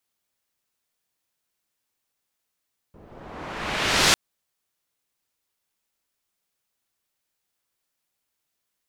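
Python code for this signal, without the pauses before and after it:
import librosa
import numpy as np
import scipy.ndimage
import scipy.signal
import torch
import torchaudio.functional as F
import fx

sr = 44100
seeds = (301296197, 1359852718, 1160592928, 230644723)

y = fx.riser_noise(sr, seeds[0], length_s=1.2, colour='white', kind='lowpass', start_hz=390.0, end_hz=6100.0, q=0.74, swell_db=23, law='exponential')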